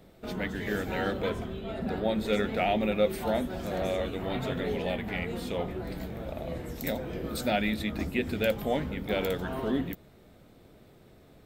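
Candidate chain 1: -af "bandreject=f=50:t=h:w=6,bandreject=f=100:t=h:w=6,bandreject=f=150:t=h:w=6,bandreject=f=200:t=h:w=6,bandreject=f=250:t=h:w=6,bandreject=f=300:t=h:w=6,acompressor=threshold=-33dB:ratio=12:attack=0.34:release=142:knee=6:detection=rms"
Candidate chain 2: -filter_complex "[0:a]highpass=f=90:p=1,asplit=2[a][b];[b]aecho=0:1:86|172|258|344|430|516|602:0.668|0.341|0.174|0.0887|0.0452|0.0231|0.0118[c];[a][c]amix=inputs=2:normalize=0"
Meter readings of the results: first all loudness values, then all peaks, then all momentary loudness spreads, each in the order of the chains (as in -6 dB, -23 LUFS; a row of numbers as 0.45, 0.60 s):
-41.0, -29.5 LUFS; -29.0, -12.0 dBFS; 9, 10 LU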